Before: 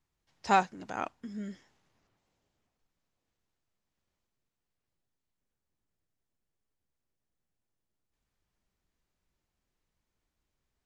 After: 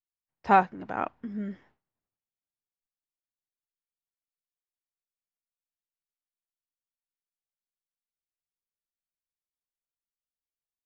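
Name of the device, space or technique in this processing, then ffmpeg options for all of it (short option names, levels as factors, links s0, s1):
hearing-loss simulation: -af "lowpass=2000,agate=range=0.0224:threshold=0.00112:ratio=3:detection=peak,volume=1.78"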